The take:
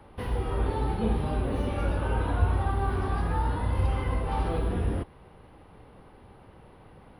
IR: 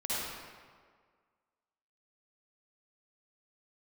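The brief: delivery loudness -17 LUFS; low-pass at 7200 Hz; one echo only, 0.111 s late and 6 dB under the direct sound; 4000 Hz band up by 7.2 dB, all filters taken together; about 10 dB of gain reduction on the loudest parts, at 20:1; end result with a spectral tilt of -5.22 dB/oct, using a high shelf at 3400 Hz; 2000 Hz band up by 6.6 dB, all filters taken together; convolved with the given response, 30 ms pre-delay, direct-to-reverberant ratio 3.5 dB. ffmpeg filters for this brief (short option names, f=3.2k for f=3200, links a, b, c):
-filter_complex "[0:a]lowpass=7.2k,equalizer=f=2k:t=o:g=7,highshelf=f=3.4k:g=3.5,equalizer=f=4k:t=o:g=4.5,acompressor=threshold=-27dB:ratio=20,aecho=1:1:111:0.501,asplit=2[a][b];[1:a]atrim=start_sample=2205,adelay=30[c];[b][c]afir=irnorm=-1:irlink=0,volume=-10dB[d];[a][d]amix=inputs=2:normalize=0,volume=14.5dB"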